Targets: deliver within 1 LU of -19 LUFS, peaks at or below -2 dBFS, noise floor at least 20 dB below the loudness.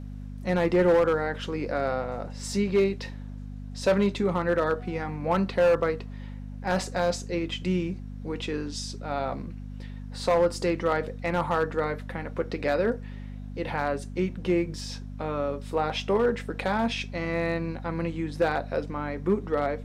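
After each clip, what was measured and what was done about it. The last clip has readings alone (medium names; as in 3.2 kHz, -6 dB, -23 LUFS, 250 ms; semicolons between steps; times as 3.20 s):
clipped samples 0.6%; clipping level -16.0 dBFS; hum 50 Hz; highest harmonic 250 Hz; hum level -36 dBFS; loudness -27.5 LUFS; peak level -16.0 dBFS; loudness target -19.0 LUFS
-> clip repair -16 dBFS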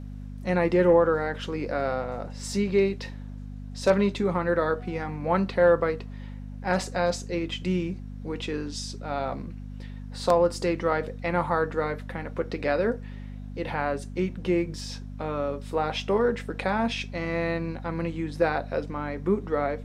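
clipped samples 0.0%; hum 50 Hz; highest harmonic 250 Hz; hum level -35 dBFS
-> de-hum 50 Hz, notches 5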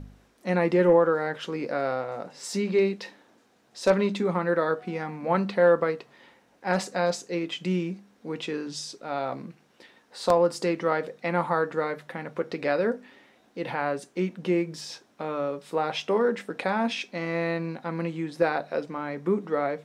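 hum not found; loudness -27.5 LUFS; peak level -7.0 dBFS; loudness target -19.0 LUFS
-> trim +8.5 dB; peak limiter -2 dBFS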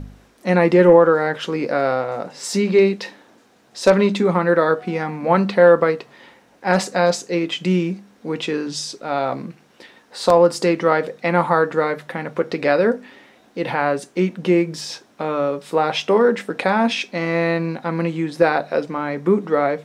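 loudness -19.0 LUFS; peak level -2.0 dBFS; noise floor -54 dBFS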